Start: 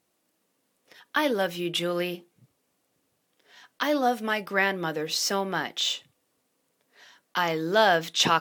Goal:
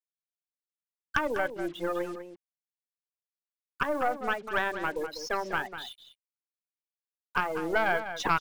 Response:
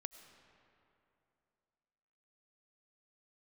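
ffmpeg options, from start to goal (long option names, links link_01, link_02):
-filter_complex "[0:a]afftfilt=real='re*gte(hypot(re,im),0.0708)':imag='im*gte(hypot(re,im),0.0708)':win_size=1024:overlap=0.75,highpass=310,highshelf=frequency=2000:width_type=q:width=3:gain=-10.5,acompressor=threshold=-29dB:ratio=2,aeval=exprs='0.266*(cos(1*acos(clip(val(0)/0.266,-1,1)))-cos(1*PI/2))+0.0531*(cos(4*acos(clip(val(0)/0.266,-1,1)))-cos(4*PI/2))':channel_layout=same,acrusher=bits=7:mix=0:aa=0.5,asplit=2[link_01][link_02];[link_02]adelay=198.3,volume=-10dB,highshelf=frequency=4000:gain=-4.46[link_03];[link_01][link_03]amix=inputs=2:normalize=0"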